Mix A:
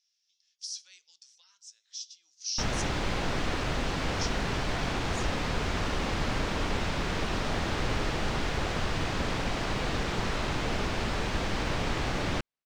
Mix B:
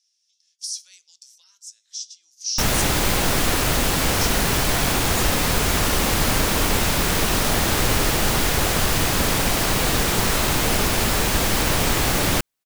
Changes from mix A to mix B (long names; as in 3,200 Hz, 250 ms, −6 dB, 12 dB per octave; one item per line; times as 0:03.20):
background +8.5 dB
master: remove high-frequency loss of the air 140 metres